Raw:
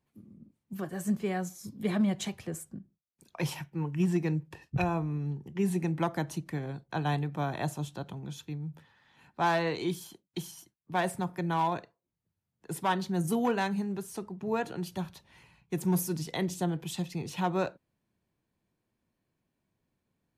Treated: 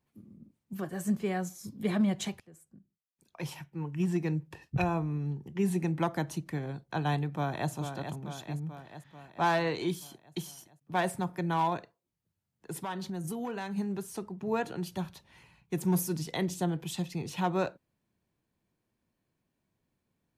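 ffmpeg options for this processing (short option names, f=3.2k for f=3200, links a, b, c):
-filter_complex "[0:a]asplit=2[a][b];[b]afade=t=in:st=7.29:d=0.01,afade=t=out:st=7.71:d=0.01,aecho=0:1:440|880|1320|1760|2200|2640|3080|3520|3960:0.421697|0.274103|0.178167|0.115808|0.0752755|0.048929|0.0318039|0.0206725|0.0134371[c];[a][c]amix=inputs=2:normalize=0,asplit=3[d][e][f];[d]afade=t=out:st=11.76:d=0.02[g];[e]acompressor=threshold=-33dB:ratio=6:attack=3.2:release=140:knee=1:detection=peak,afade=t=in:st=11.76:d=0.02,afade=t=out:st=13.76:d=0.02[h];[f]afade=t=in:st=13.76:d=0.02[i];[g][h][i]amix=inputs=3:normalize=0,asplit=2[j][k];[j]atrim=end=2.4,asetpts=PTS-STARTPTS,afade=t=out:st=2.396:d=0.004:c=hsin:silence=0.0749894[l];[k]atrim=start=2.4,asetpts=PTS-STARTPTS,afade=t=in:d=2.21:silence=0.0749894[m];[l][m]concat=n=2:v=0:a=1"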